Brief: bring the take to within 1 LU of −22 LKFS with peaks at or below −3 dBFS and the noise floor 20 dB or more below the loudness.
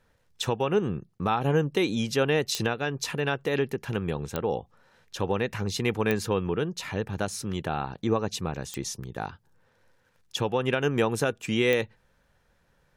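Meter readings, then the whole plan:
number of clicks 5; integrated loudness −28.5 LKFS; sample peak −11.0 dBFS; target loudness −22.0 LKFS
→ click removal
level +6.5 dB

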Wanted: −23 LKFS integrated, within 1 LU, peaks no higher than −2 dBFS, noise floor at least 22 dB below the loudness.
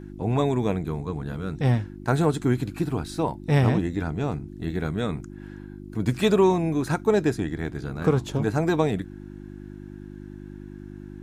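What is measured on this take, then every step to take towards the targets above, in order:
mains hum 50 Hz; hum harmonics up to 350 Hz; level of the hum −38 dBFS; integrated loudness −25.0 LKFS; sample peak −8.5 dBFS; target loudness −23.0 LKFS
→ hum removal 50 Hz, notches 7
level +2 dB

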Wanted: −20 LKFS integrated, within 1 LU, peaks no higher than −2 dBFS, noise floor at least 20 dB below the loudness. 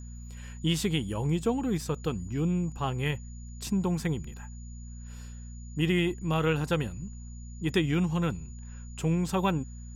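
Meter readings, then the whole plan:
mains hum 60 Hz; hum harmonics up to 240 Hz; level of the hum −39 dBFS; interfering tone 6,900 Hz; level of the tone −54 dBFS; integrated loudness −29.5 LKFS; sample peak −14.0 dBFS; target loudness −20.0 LKFS
→ hum removal 60 Hz, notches 4
notch filter 6,900 Hz, Q 30
level +9.5 dB

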